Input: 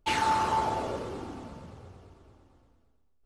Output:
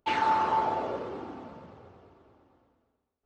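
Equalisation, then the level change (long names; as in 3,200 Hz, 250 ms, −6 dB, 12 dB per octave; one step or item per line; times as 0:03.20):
high-pass filter 410 Hz 6 dB per octave
head-to-tape spacing loss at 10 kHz 38 dB
high-shelf EQ 4,800 Hz +10.5 dB
+5.0 dB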